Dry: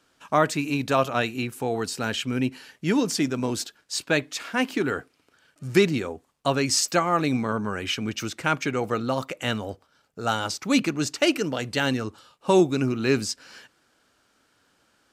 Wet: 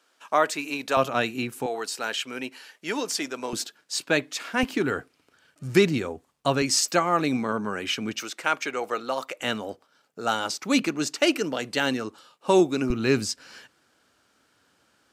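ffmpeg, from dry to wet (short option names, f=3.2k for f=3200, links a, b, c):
-af "asetnsamples=n=441:p=0,asendcmd='0.97 highpass f 140;1.66 highpass f 490;3.53 highpass f 170;4.63 highpass f 51;6.62 highpass f 170;8.21 highpass f 460;9.4 highpass f 210;12.9 highpass f 52',highpass=420"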